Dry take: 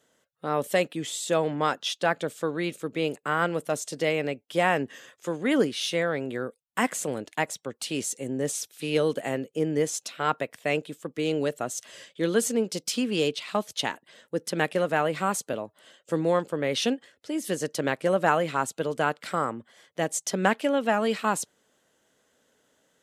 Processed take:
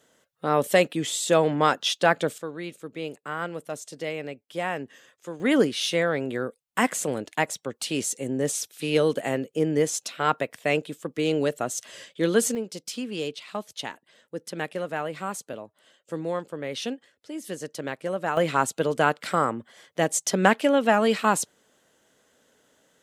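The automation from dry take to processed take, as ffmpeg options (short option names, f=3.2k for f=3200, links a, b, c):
-af "asetnsamples=n=441:p=0,asendcmd='2.38 volume volume -6dB;5.4 volume volume 2.5dB;12.55 volume volume -5.5dB;18.37 volume volume 4dB',volume=4.5dB"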